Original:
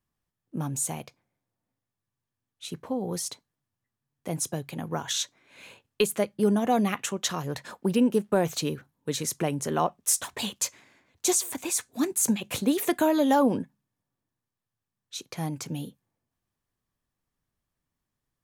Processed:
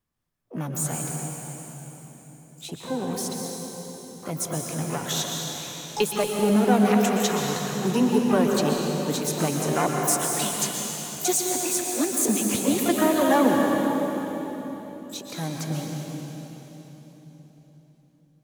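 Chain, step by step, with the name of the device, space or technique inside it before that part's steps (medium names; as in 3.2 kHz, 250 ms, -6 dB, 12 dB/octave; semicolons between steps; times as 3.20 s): shimmer-style reverb (harmony voices +12 st -9 dB; reverberation RT60 4.1 s, pre-delay 113 ms, DRR 0 dB)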